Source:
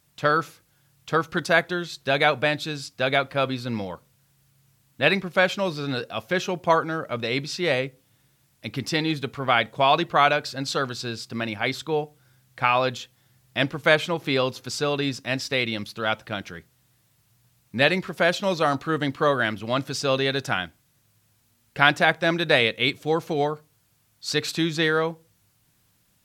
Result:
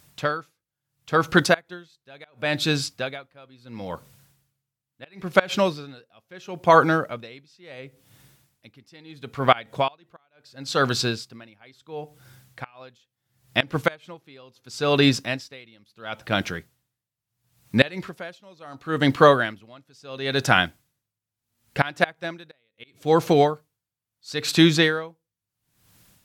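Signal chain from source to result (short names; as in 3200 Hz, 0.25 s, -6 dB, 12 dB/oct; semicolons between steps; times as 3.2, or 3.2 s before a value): flipped gate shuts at -7 dBFS, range -24 dB; maximiser +9 dB; dB-linear tremolo 0.73 Hz, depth 34 dB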